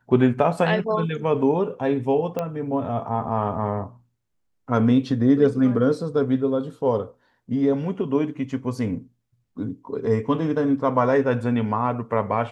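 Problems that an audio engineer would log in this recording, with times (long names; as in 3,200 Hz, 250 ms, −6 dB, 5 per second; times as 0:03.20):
0:02.39: click −14 dBFS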